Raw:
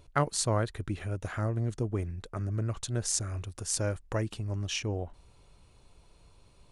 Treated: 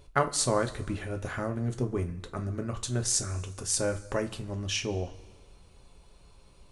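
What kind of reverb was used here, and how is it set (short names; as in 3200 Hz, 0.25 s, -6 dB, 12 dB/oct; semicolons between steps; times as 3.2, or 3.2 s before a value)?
two-slope reverb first 0.22 s, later 1.5 s, from -19 dB, DRR 4.5 dB; gain +1.5 dB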